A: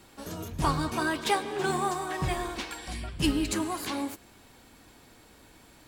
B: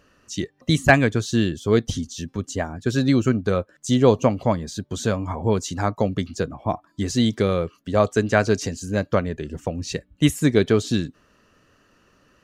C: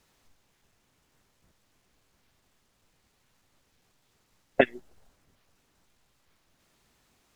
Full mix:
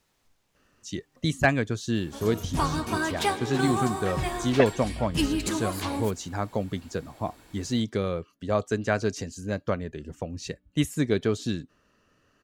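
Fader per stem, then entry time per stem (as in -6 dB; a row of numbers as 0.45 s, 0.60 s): +0.5 dB, -7.0 dB, -3.0 dB; 1.95 s, 0.55 s, 0.00 s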